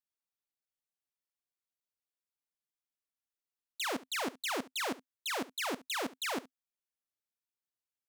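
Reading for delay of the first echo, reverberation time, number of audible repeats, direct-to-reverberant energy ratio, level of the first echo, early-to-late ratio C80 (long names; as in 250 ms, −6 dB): 70 ms, no reverb audible, 1, no reverb audible, −19.0 dB, no reverb audible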